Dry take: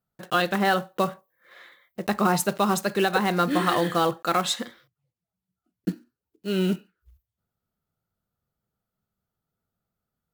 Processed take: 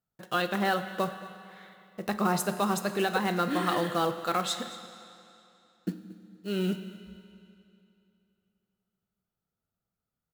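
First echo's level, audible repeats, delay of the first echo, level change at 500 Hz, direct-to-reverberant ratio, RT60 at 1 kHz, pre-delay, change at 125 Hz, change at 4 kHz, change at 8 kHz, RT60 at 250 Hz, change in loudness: −19.5 dB, 1, 229 ms, −5.0 dB, 9.5 dB, 2.8 s, 9 ms, −5.0 dB, −5.0 dB, −5.0 dB, 2.8 s, −5.0 dB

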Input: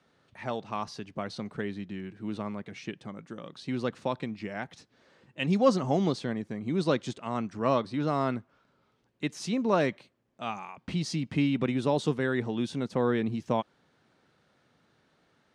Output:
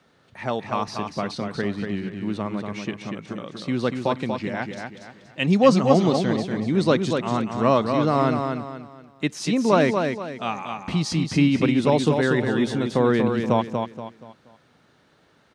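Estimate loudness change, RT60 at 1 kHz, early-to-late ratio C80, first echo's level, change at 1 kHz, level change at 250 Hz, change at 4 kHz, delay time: +8.0 dB, no reverb audible, no reverb audible, −5.5 dB, +8.5 dB, +8.0 dB, +8.0 dB, 238 ms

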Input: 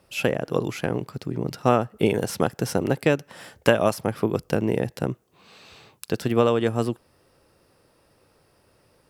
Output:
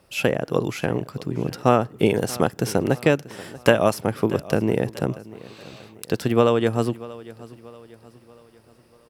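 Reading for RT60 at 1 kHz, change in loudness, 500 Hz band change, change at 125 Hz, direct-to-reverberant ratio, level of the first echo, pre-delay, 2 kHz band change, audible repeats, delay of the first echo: no reverb audible, +2.0 dB, +2.0 dB, +2.0 dB, no reverb audible, −19.0 dB, no reverb audible, +2.0 dB, 3, 636 ms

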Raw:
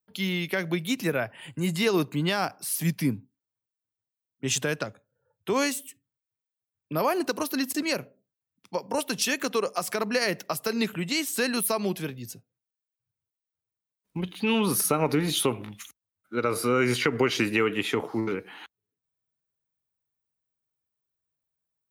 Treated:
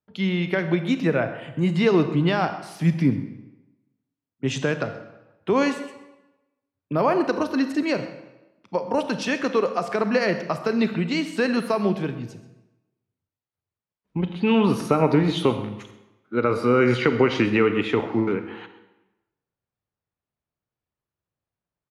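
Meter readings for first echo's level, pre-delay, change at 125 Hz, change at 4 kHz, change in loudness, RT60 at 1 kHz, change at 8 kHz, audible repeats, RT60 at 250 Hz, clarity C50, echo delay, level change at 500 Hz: −17.5 dB, 30 ms, +6.5 dB, −2.5 dB, +4.0 dB, 1.0 s, −12.5 dB, 1, 1.0 s, 10.0 dB, 129 ms, +5.5 dB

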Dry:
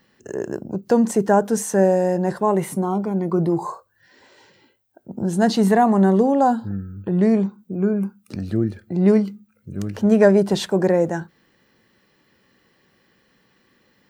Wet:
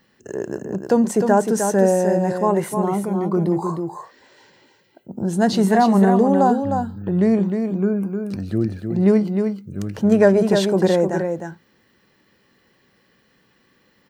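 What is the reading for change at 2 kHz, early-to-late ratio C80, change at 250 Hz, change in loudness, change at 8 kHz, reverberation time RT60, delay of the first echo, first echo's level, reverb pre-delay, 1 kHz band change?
+1.0 dB, no reverb audible, +1.0 dB, +0.5 dB, +1.0 dB, no reverb audible, 307 ms, −6.0 dB, no reverb audible, +1.0 dB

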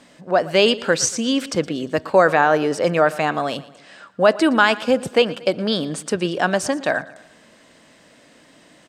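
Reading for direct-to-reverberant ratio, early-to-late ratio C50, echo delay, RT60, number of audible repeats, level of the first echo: no reverb audible, no reverb audible, 117 ms, no reverb audible, 3, −19.0 dB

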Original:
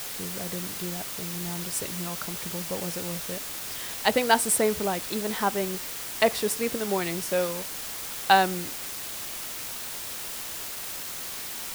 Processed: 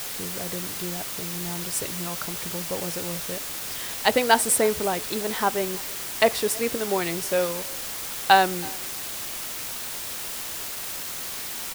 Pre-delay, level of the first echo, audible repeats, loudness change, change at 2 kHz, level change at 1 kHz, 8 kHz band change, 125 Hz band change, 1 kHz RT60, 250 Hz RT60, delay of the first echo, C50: no reverb audible, −23.5 dB, 1, +2.5 dB, +2.5 dB, +2.5 dB, +2.5 dB, 0.0 dB, no reverb audible, no reverb audible, 326 ms, no reverb audible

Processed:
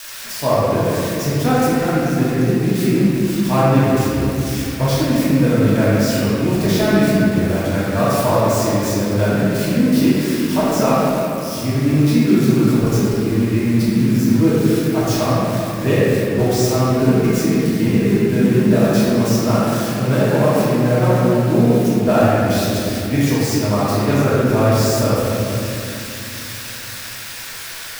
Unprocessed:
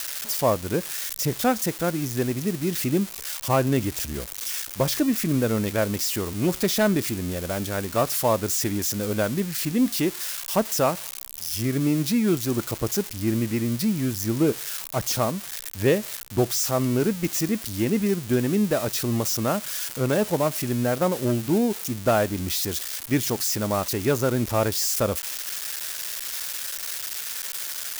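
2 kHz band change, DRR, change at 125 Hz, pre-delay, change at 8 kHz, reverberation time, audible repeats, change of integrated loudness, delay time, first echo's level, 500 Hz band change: +7.5 dB, −11.0 dB, +11.5 dB, 3 ms, 0.0 dB, 3.0 s, no echo audible, +8.0 dB, no echo audible, no echo audible, +8.0 dB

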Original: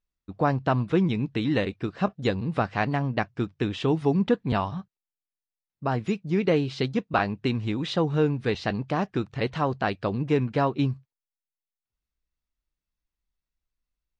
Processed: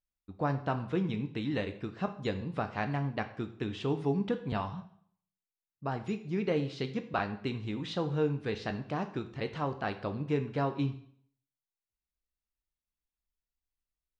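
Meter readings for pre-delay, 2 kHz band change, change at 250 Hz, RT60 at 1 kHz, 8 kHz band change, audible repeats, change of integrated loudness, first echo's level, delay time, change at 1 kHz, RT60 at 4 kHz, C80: 6 ms, −8.0 dB, −8.0 dB, 0.60 s, can't be measured, no echo audible, −7.5 dB, no echo audible, no echo audible, −8.0 dB, 0.55 s, 16.0 dB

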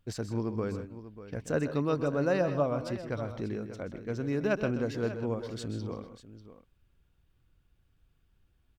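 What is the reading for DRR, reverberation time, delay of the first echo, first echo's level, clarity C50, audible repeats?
no reverb audible, no reverb audible, 129 ms, −12.0 dB, no reverb audible, 2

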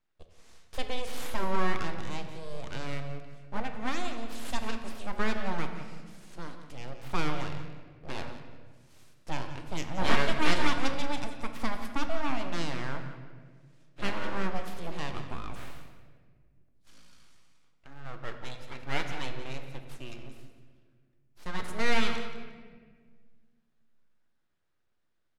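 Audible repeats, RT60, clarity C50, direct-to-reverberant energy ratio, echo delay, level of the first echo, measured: 2, 1.7 s, 6.5 dB, 5.0 dB, 177 ms, −13.0 dB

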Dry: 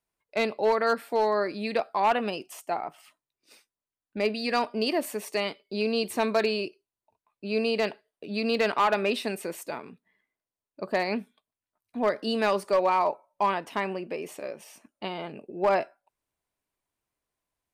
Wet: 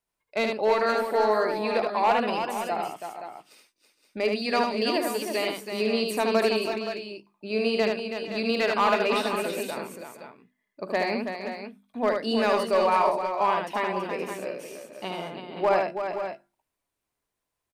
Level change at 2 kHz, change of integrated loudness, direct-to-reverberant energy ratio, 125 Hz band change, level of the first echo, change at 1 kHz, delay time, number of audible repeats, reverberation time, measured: +2.5 dB, +1.5 dB, no reverb audible, +1.0 dB, −4.0 dB, +2.5 dB, 75 ms, 4, no reverb audible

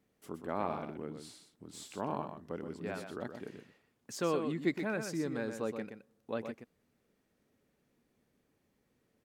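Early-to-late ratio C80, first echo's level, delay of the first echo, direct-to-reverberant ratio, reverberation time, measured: no reverb audible, −7.5 dB, 123 ms, no reverb audible, no reverb audible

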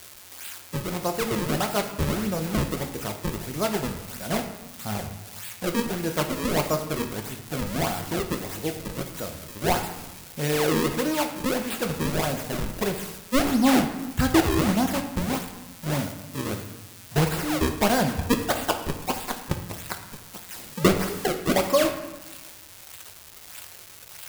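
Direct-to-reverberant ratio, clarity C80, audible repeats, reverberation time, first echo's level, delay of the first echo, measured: 4.0 dB, 10.5 dB, no echo audible, 1.1 s, no echo audible, no echo audible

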